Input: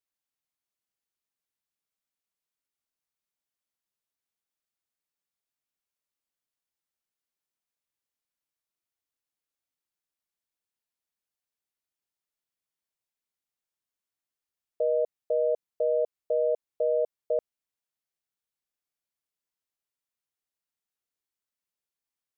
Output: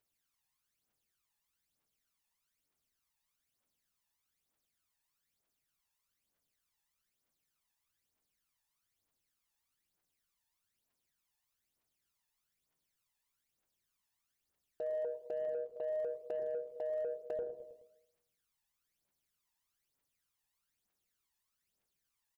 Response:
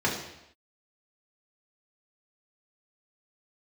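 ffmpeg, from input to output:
-filter_complex "[0:a]aphaser=in_gain=1:out_gain=1:delay=1.2:decay=0.68:speed=1.1:type=triangular,bandreject=f=60:t=h:w=6,bandreject=f=120:t=h:w=6,bandreject=f=180:t=h:w=6,bandreject=f=240:t=h:w=6,bandreject=f=300:t=h:w=6,bandreject=f=360:t=h:w=6,bandreject=f=420:t=h:w=6,bandreject=f=480:t=h:w=6,aecho=1:1:106|212|318|424:0.0944|0.0491|0.0255|0.0133,acompressor=threshold=0.0178:ratio=10,asplit=2[s0][s1];[1:a]atrim=start_sample=2205,adelay=93[s2];[s1][s2]afir=irnorm=-1:irlink=0,volume=0.0447[s3];[s0][s3]amix=inputs=2:normalize=0,aeval=exprs='0.0501*(cos(1*acos(clip(val(0)/0.0501,-1,1)))-cos(1*PI/2))+0.00126*(cos(7*acos(clip(val(0)/0.0501,-1,1)))-cos(7*PI/2))':c=same,alimiter=level_in=3.98:limit=0.0631:level=0:latency=1:release=21,volume=0.251,volume=1.68"

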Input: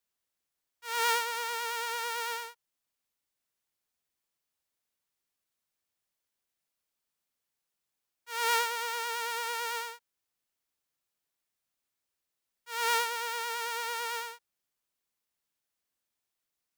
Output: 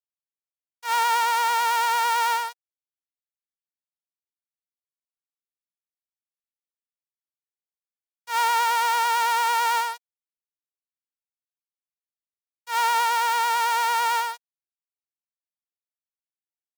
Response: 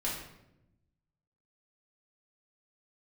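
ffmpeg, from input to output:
-af "acrusher=bits=6:mix=0:aa=0.5,highpass=f=760:t=q:w=4.9,alimiter=limit=0.112:level=0:latency=1:release=36,volume=2.37"

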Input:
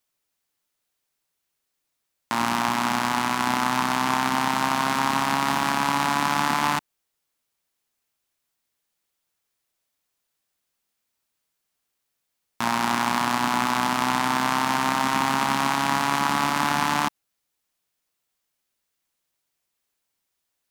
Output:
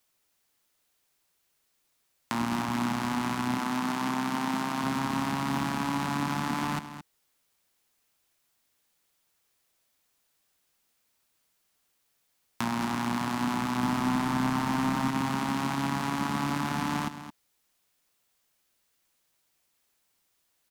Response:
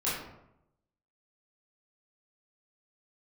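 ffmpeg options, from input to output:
-filter_complex "[0:a]asettb=1/sr,asplit=3[s0][s1][s2];[s0]atrim=end=3.584[s3];[s1]atrim=start=3.58:end=4.84,asetpts=PTS-STARTPTS,afade=t=in:d=0.004:c=qsin,afade=t=out:st=1.256:d=0.004:c=qsin,highpass=180[s4];[s2]atrim=start=4.836[s5];[s3][s4]acrossfade=d=0.004:c1=hsin:c2=qsin[s6];[s6][s5]acrossfade=d=0.004:c1=qsin:c2=hsin,asettb=1/sr,asplit=3[s7][s8][s9];[s7]atrim=end=13.834[s10];[s8]atrim=start=13.83:end=15.11,asetpts=PTS-STARTPTS,afade=t=in:d=0.004:c=qsin,afade=t=out:st=1.276:d=0.004:c=qsin,acontrast=58[s11];[s9]atrim=start=15.106[s12];[s10][s11]acrossfade=d=0.004:c1=hsin:c2=qsin[s13];[s13][s12]acrossfade=d=0.004:c1=qsin:c2=hsin,alimiter=limit=0.266:level=0:latency=1:release=299,acrossover=split=340[s14][s15];[s15]acompressor=threshold=0.0126:ratio=3[s16];[s14][s16]amix=inputs=2:normalize=0,asplit=2[s17][s18];[s18]aecho=0:1:218:0.251[s19];[s17][s19]amix=inputs=2:normalize=0,volume=1.78"

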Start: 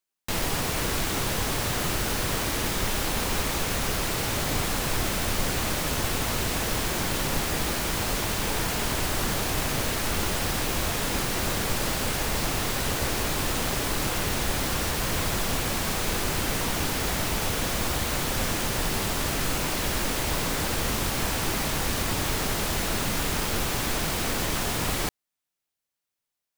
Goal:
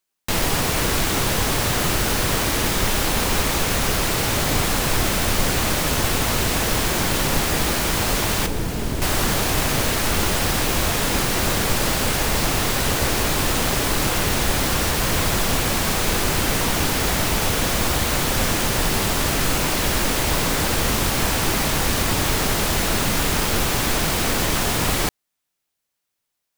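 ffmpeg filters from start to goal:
-filter_complex "[0:a]asettb=1/sr,asplit=3[s0][s1][s2];[s0]atrim=end=8.464[s3];[s1]atrim=start=8.46:end=9.02,asetpts=PTS-STARTPTS,afade=t=in:d=0.004:c=qsin,afade=t=out:st=0.556:d=0.004:c=qsin,acrossover=split=480[s4][s5];[s5]acompressor=threshold=0.00501:ratio=2[s6];[s4][s6]amix=inputs=2:normalize=0[s7];[s2]atrim=start=9.016[s8];[s3][s7]acrossfade=d=0.004:c1=hsin:c2=qsin[s9];[s9][s8]acrossfade=d=0.004:c1=qsin:c2=hsin,volume=2.11"

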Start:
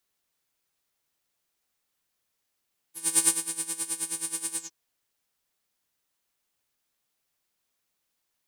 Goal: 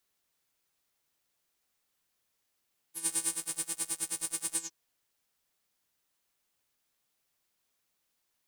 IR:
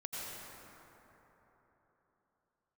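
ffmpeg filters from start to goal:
-filter_complex "[0:a]asettb=1/sr,asplit=3[s0][s1][s2];[s0]atrim=end=3.084[s3];[s1]atrim=start=3.08:end=4.55,asetpts=PTS-STARTPTS,afade=t=in:d=0.004:c=qsin,afade=t=out:st=1.466:d=0.004:c=qsin,aeval=exprs='sgn(val(0))*max(abs(val(0))-0.0126,0)':c=same[s4];[s2]atrim=start=4.546[s5];[s3][s4]acrossfade=d=0.004:c1=hsin:c2=qsin[s6];[s6][s5]acrossfade=d=0.004:c1=qsin:c2=hsin,alimiter=limit=0.158:level=0:latency=1:release=250"

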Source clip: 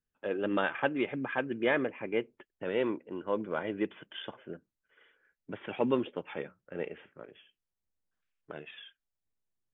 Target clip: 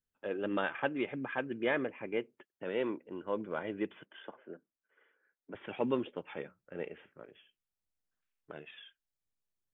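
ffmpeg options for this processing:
-filter_complex "[0:a]asettb=1/sr,asplit=3[s0][s1][s2];[s0]atrim=end=2.174[s3];[s1]atrim=start=2.17:end=3.05,asetpts=PTS-STARTPTS,afade=t=in:d=0.004:c=qsin,afade=t=out:st=0.876:d=0.004:c=qsin,highpass=120[s4];[s2]atrim=start=3.046[s5];[s3][s4]acrossfade=d=0.004:c1=hsin:c2=qsin[s6];[s6][s5]acrossfade=d=0.004:c1=qsin:c2=hsin,asettb=1/sr,asplit=3[s7][s8][s9];[s7]atrim=end=4.054[s10];[s8]atrim=start=4.05:end=5.55,asetpts=PTS-STARTPTS,afade=t=in:d=0.004:c=qsin,afade=t=out:st=1.496:d=0.004:c=qsin,acrossover=split=200 2200:gain=0.126 1 0.178[s11][s12][s13];[s11][s12][s13]amix=inputs=3:normalize=0[s14];[s9]atrim=start=5.546[s15];[s10][s14]acrossfade=d=0.004:c1=hsin:c2=qsin[s16];[s16][s15]acrossfade=d=0.004:c1=qsin:c2=hsin,volume=0.668"

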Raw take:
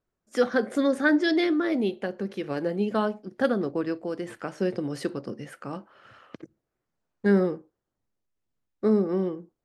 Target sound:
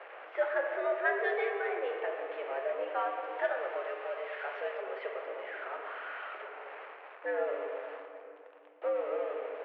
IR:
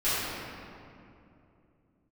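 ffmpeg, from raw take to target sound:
-filter_complex "[0:a]aeval=exprs='val(0)+0.5*0.0335*sgn(val(0))':c=same,asettb=1/sr,asplit=3[s0][s1][s2];[s0]atrim=end=3.234[s3];[s1]atrim=start=3.23:end=4.81,asetpts=PTS-STARTPTS,afade=t=in:d=0.004:c=qsin,afade=t=out:st=1.576:d=0.004:c=qsin,aemphasis=mode=production:type=bsi[s4];[s2]atrim=start=4.806[s5];[s3][s4]acrossfade=d=0.004:c1=hsin:c2=qsin[s6];[s6][s5]acrossfade=d=0.004:c1=qsin:c2=hsin,highpass=f=400:t=q:w=0.5412,highpass=f=400:t=q:w=1.307,lowpass=f=2600:t=q:w=0.5176,lowpass=f=2600:t=q:w=0.7071,lowpass=f=2600:t=q:w=1.932,afreqshift=100,asplit=2[s7][s8];[1:a]atrim=start_sample=2205,lowpass=4900,adelay=11[s9];[s8][s9]afir=irnorm=-1:irlink=0,volume=0.168[s10];[s7][s10]amix=inputs=2:normalize=0,volume=0.422"

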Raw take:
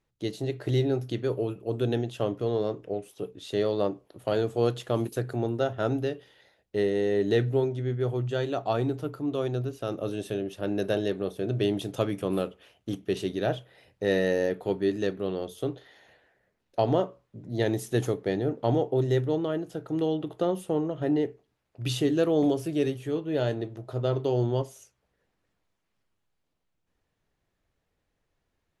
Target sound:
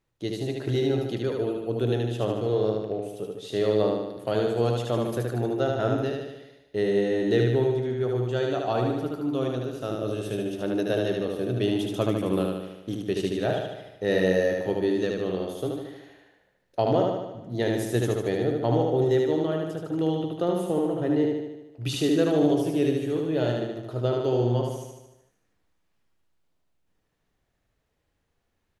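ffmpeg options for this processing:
-af "aecho=1:1:75|150|225|300|375|450|525|600|675:0.708|0.418|0.246|0.145|0.0858|0.0506|0.0299|0.0176|0.0104"

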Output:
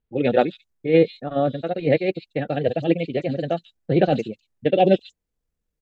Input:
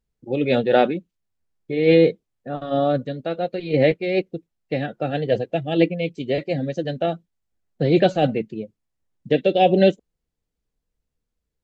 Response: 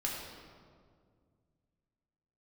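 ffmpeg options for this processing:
-filter_complex "[0:a]atempo=2,acrossover=split=4000[s0][s1];[s1]adelay=140[s2];[s0][s2]amix=inputs=2:normalize=0"

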